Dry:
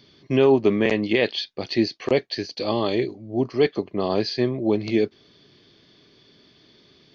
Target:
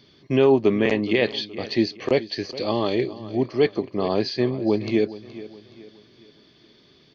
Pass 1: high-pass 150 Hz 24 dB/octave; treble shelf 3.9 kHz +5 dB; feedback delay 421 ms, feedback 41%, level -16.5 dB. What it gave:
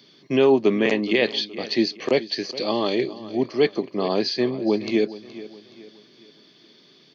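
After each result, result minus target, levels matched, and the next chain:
125 Hz band -5.5 dB; 8 kHz band +4.5 dB
treble shelf 3.9 kHz +5 dB; feedback delay 421 ms, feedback 41%, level -16.5 dB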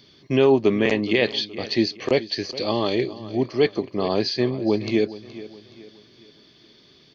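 8 kHz band +4.5 dB
treble shelf 3.9 kHz -2 dB; feedback delay 421 ms, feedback 41%, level -16.5 dB

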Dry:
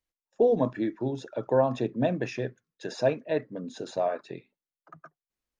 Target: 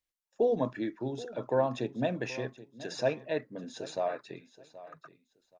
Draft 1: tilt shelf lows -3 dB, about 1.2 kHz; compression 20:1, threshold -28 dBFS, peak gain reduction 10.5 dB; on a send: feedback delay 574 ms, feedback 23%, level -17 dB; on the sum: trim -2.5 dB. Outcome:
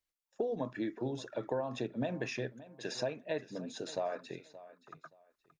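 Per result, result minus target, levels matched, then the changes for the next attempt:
compression: peak gain reduction +10.5 dB; echo 202 ms early
remove: compression 20:1, threshold -28 dBFS, peak gain reduction 10.5 dB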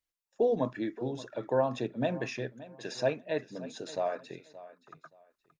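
echo 202 ms early
change: feedback delay 776 ms, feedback 23%, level -17 dB

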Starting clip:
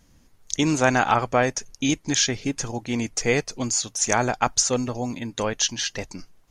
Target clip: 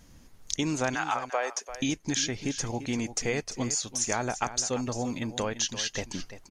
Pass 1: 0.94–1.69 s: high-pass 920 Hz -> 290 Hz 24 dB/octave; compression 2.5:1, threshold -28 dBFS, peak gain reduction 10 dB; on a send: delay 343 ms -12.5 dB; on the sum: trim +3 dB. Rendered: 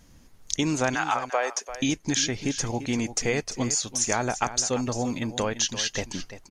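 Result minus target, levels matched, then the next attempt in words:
compression: peak gain reduction -3.5 dB
0.94–1.69 s: high-pass 920 Hz -> 290 Hz 24 dB/octave; compression 2.5:1, threshold -34 dBFS, peak gain reduction 13.5 dB; on a send: delay 343 ms -12.5 dB; on the sum: trim +3 dB

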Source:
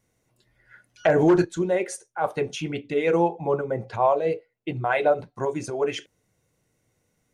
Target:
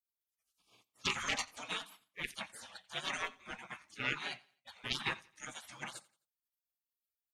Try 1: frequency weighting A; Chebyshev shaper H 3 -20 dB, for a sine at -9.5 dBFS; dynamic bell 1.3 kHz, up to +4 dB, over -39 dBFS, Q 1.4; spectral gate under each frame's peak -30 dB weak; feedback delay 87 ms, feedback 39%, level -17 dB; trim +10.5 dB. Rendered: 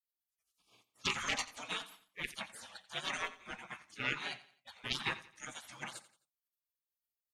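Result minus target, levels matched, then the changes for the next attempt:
echo-to-direct +6.5 dB
change: feedback delay 87 ms, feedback 39%, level -23.5 dB

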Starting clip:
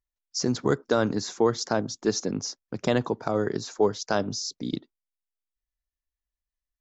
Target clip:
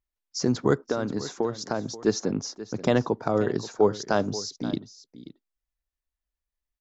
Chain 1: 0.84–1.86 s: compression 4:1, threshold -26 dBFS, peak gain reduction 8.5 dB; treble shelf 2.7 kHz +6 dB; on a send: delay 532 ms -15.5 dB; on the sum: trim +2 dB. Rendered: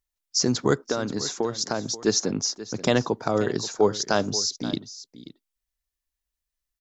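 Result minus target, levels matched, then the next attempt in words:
4 kHz band +6.5 dB
0.84–1.86 s: compression 4:1, threshold -26 dBFS, peak gain reduction 8.5 dB; treble shelf 2.7 kHz -5.5 dB; on a send: delay 532 ms -15.5 dB; on the sum: trim +2 dB

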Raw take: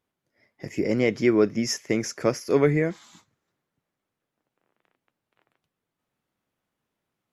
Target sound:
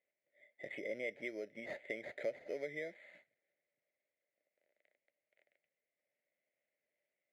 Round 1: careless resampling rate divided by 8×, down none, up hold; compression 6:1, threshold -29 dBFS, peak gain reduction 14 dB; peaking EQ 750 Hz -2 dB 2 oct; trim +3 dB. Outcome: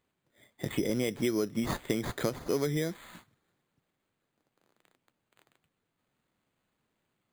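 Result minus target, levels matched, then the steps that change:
1 kHz band +6.0 dB
add after compression: two resonant band-passes 1.1 kHz, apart 1.8 oct

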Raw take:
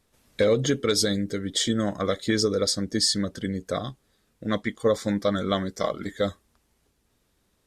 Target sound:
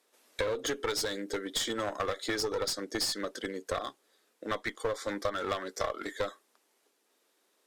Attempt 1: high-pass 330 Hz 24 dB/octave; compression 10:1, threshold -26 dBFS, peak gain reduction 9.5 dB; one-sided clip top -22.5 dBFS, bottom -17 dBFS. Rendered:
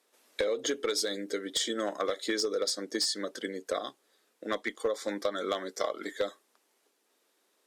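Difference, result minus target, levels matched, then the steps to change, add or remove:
one-sided clip: distortion -12 dB; 1 kHz band -3.5 dB
add after high-pass: dynamic bell 1.3 kHz, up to +6 dB, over -41 dBFS, Q 1.2; change: one-sided clip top -31.5 dBFS, bottom -17 dBFS

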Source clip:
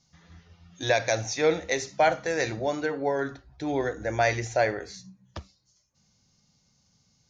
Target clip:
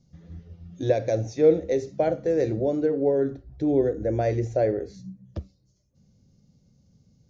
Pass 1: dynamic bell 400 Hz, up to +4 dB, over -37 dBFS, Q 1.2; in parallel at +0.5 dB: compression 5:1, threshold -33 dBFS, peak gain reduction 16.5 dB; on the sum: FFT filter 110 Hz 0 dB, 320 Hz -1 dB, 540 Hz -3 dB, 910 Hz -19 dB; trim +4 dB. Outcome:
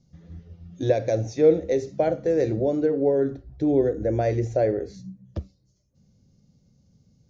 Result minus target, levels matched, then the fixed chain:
compression: peak gain reduction -6.5 dB
dynamic bell 400 Hz, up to +4 dB, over -37 dBFS, Q 1.2; in parallel at +0.5 dB: compression 5:1, threshold -41 dBFS, peak gain reduction 23 dB; on the sum: FFT filter 110 Hz 0 dB, 320 Hz -1 dB, 540 Hz -3 dB, 910 Hz -19 dB; trim +4 dB

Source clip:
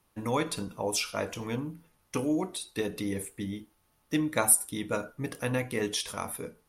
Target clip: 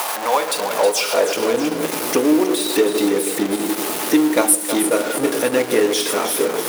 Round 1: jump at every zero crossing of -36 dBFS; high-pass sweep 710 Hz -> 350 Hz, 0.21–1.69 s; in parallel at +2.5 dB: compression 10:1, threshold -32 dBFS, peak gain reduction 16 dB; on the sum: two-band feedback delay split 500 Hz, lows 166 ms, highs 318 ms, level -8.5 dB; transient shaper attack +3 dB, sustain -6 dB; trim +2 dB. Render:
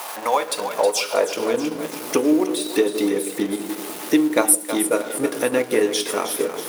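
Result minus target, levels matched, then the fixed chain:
jump at every zero crossing: distortion -8 dB
jump at every zero crossing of -24.5 dBFS; high-pass sweep 710 Hz -> 350 Hz, 0.21–1.69 s; in parallel at +2.5 dB: compression 10:1, threshold -32 dBFS, peak gain reduction 17 dB; on the sum: two-band feedback delay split 500 Hz, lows 166 ms, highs 318 ms, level -8.5 dB; transient shaper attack +3 dB, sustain -6 dB; trim +2 dB

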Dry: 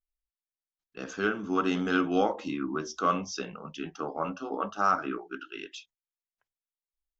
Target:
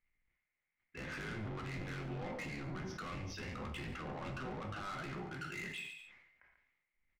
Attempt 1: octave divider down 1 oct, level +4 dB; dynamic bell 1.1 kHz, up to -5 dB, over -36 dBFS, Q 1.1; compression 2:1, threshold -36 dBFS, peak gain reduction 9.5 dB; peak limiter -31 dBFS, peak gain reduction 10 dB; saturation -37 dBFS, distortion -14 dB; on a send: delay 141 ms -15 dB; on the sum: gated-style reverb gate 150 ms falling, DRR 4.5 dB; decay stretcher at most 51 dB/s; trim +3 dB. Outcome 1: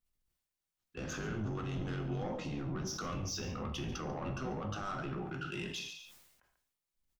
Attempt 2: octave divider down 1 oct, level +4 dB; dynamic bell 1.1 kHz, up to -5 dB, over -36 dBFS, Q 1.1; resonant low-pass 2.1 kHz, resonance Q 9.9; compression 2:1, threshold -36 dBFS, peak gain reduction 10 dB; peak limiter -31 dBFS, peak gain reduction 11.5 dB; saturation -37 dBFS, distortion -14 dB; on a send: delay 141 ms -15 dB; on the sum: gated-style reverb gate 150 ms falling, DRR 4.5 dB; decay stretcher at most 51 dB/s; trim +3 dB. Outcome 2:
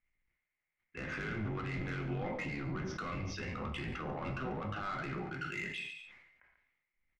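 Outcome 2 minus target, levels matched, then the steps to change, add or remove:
saturation: distortion -7 dB
change: saturation -44.5 dBFS, distortion -8 dB

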